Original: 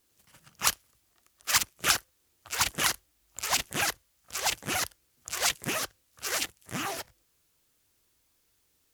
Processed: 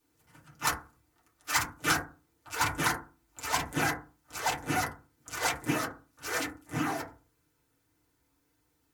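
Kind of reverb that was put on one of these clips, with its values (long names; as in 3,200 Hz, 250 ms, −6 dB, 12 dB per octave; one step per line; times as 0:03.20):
feedback delay network reverb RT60 0.34 s, low-frequency decay 1.35×, high-frequency decay 0.25×, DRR −9.5 dB
level −9 dB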